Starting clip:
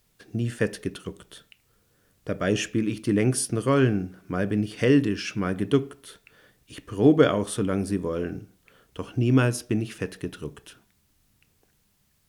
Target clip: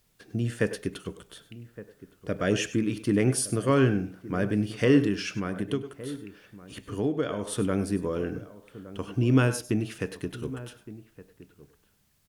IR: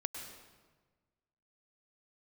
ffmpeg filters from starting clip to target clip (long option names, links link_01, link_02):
-filter_complex "[1:a]atrim=start_sample=2205,afade=type=out:start_time=0.15:duration=0.01,atrim=end_sample=7056[link_01];[0:a][link_01]afir=irnorm=-1:irlink=0,asettb=1/sr,asplit=3[link_02][link_03][link_04];[link_02]atrim=end=5.274[link_05];[link_03]atrim=start=5.27:end=7.53,asetpts=PTS-STARTPTS,afade=type=in:duration=0.004:curve=qsin,afade=type=out:start_time=2.256:duration=0.004:curve=qsin,acompressor=threshold=-27dB:ratio=3[link_06];[link_04]atrim=start=7.526[link_07];[link_05][link_06]acrossfade=duration=0.004:curve1=hsin:curve2=qsin[link_08];[link_08][link_07]acrossfade=duration=0.004:curve1=qsin:curve2=hsin,asplit=2[link_09][link_10];[link_10]adelay=1166,volume=-16dB,highshelf=frequency=4000:gain=-26.2[link_11];[link_09][link_11]amix=inputs=2:normalize=0"